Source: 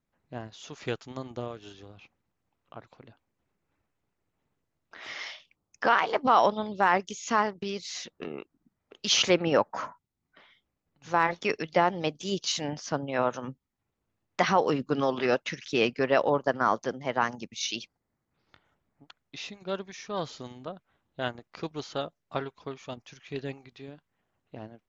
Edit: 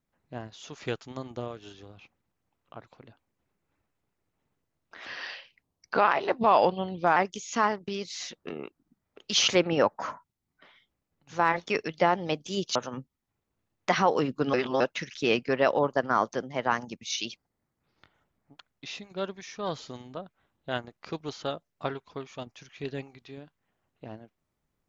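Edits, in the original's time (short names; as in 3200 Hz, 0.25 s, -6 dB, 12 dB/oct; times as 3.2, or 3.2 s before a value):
5.05–6.91 speed 88%
12.5–13.26 cut
15.04–15.31 reverse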